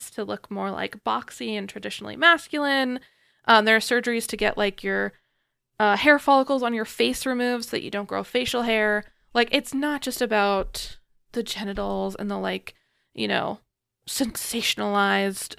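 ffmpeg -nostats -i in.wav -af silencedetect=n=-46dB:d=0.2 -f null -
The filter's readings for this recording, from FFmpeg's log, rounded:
silence_start: 3.06
silence_end: 3.45 | silence_duration: 0.38
silence_start: 5.15
silence_end: 5.80 | silence_duration: 0.65
silence_start: 9.08
silence_end: 9.34 | silence_duration: 0.26
silence_start: 10.98
silence_end: 11.34 | silence_duration: 0.35
silence_start: 12.71
silence_end: 13.16 | silence_duration: 0.45
silence_start: 13.57
silence_end: 14.07 | silence_duration: 0.50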